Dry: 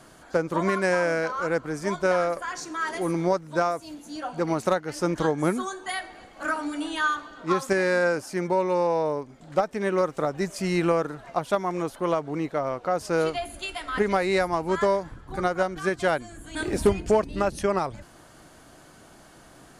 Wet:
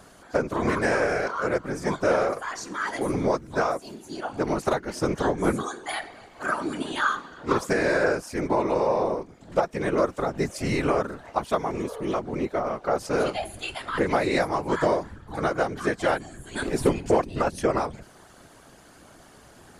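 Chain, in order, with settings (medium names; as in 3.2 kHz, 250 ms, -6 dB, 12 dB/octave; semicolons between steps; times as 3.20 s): whisper effect; spectral replace 11.81–12.11 s, 430–1700 Hz before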